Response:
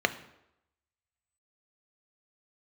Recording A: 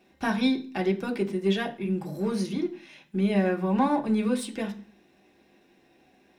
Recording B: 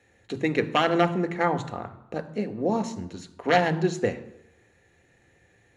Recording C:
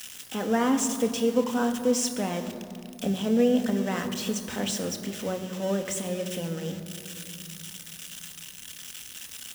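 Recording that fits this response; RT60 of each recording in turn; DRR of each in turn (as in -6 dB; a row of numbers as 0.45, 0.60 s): B; 0.40, 0.85, 2.6 s; 0.5, 9.5, 5.5 dB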